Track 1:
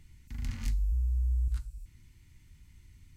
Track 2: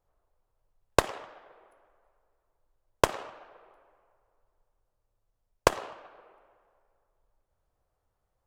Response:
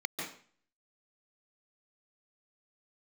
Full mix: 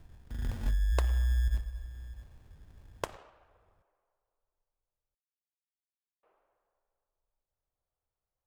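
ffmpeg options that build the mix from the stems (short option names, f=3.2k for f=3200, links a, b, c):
-filter_complex "[0:a]acrusher=samples=26:mix=1:aa=0.000001,volume=1dB,asplit=2[a][b];[b]volume=-16.5dB[c];[1:a]volume=-13.5dB,asplit=3[d][e][f];[d]atrim=end=5.15,asetpts=PTS-STARTPTS,afade=t=out:st=5.146:d=0.004:c=hsin[g];[e]atrim=start=5.15:end=6.23,asetpts=PTS-STARTPTS,volume=0[h];[f]atrim=start=6.23,asetpts=PTS-STARTPTS,afade=t=in:d=0.004:c=hsin[i];[g][h][i]concat=n=3:v=0:a=1[j];[c]aecho=0:1:656:1[k];[a][j][k]amix=inputs=3:normalize=0"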